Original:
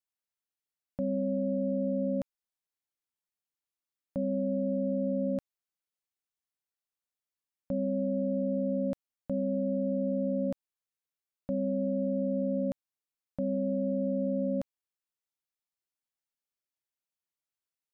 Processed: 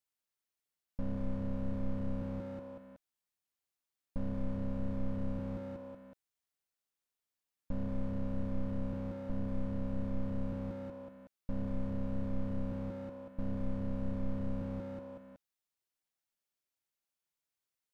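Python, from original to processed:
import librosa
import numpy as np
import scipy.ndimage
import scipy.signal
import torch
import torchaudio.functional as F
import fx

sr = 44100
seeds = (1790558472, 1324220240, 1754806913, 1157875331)

p1 = fx.leveller(x, sr, passes=3)
p2 = p1 + fx.echo_feedback(p1, sr, ms=186, feedback_pct=43, wet_db=-13.5, dry=0)
p3 = fx.slew_limit(p2, sr, full_power_hz=1.6)
y = F.gain(torch.from_numpy(p3), 7.0).numpy()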